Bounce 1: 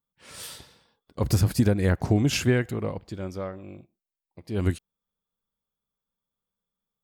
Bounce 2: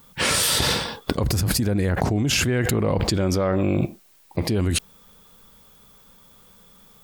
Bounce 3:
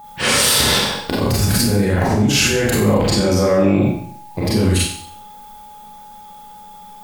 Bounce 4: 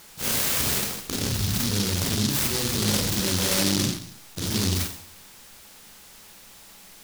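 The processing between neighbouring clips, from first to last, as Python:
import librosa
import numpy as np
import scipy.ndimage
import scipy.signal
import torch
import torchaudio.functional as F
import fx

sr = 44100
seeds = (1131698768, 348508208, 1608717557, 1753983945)

y1 = fx.env_flatten(x, sr, amount_pct=100)
y1 = y1 * 10.0 ** (-4.5 / 20.0)
y2 = fx.rev_schroeder(y1, sr, rt60_s=0.6, comb_ms=30, drr_db=-6.5)
y2 = y2 + 10.0 ** (-36.0 / 20.0) * np.sin(2.0 * np.pi * 840.0 * np.arange(len(y2)) / sr)
y2 = y2 * 10.0 ** (-1.0 / 20.0)
y3 = fx.noise_mod_delay(y2, sr, seeds[0], noise_hz=4500.0, depth_ms=0.42)
y3 = y3 * 10.0 ** (-9.0 / 20.0)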